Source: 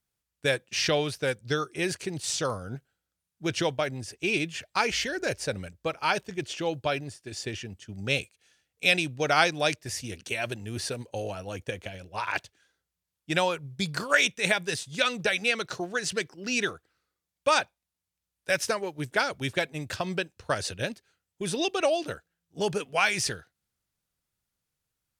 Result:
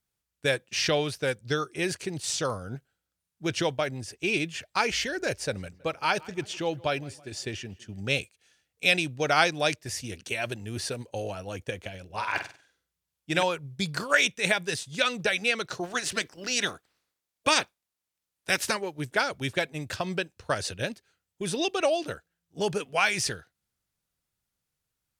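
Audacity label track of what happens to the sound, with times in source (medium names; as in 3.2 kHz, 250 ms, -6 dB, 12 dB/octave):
5.330000	8.060000	filtered feedback delay 163 ms, feedback 47%, low-pass 3.2 kHz, level -22 dB
12.050000	13.430000	flutter echo walls apart 8.2 m, dies away in 0.38 s
15.830000	18.760000	spectral peaks clipped ceiling under each frame's peak by 15 dB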